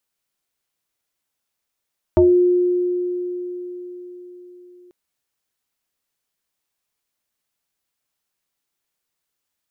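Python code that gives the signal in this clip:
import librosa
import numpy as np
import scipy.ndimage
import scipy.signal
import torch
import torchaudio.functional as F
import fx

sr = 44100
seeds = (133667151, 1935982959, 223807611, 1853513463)

y = fx.fm2(sr, length_s=2.74, level_db=-8.5, carrier_hz=357.0, ratio=0.76, index=1.3, index_s=0.27, decay_s=4.52, shape='exponential')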